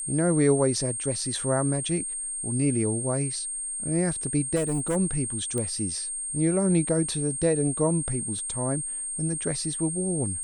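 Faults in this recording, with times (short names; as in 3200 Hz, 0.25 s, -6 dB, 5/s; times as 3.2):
tone 8600 Hz -30 dBFS
4.55–4.97 clipped -22 dBFS
5.58 pop -17 dBFS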